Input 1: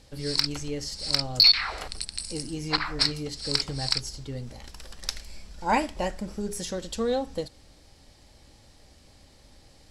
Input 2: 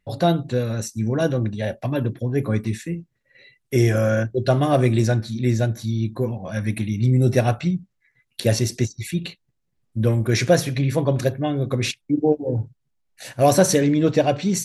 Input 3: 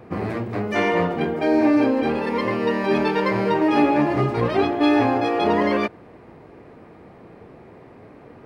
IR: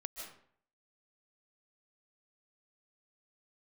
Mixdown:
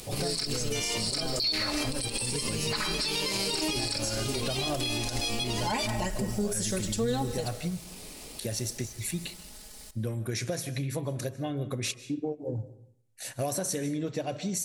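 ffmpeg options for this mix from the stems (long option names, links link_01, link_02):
-filter_complex "[0:a]acrusher=bits=8:mix=0:aa=0.000001,aecho=1:1:4.7:0.94,volume=-3dB,asplit=2[link_01][link_02];[link_02]volume=-6dB[link_03];[1:a]acompressor=threshold=-22dB:ratio=6,volume=-9dB,asplit=3[link_04][link_05][link_06];[link_05]volume=-7.5dB[link_07];[2:a]aexciter=amount=10.4:drive=8.2:freq=2700,volume=-6.5dB[link_08];[link_06]apad=whole_len=372886[link_09];[link_08][link_09]sidechaincompress=threshold=-41dB:ratio=8:attack=16:release=285[link_10];[3:a]atrim=start_sample=2205[link_11];[link_03][link_07]amix=inputs=2:normalize=0[link_12];[link_12][link_11]afir=irnorm=-1:irlink=0[link_13];[link_01][link_04][link_10][link_13]amix=inputs=4:normalize=0,equalizer=frequency=9400:width_type=o:width=1.3:gain=11,alimiter=limit=-20.5dB:level=0:latency=1:release=70"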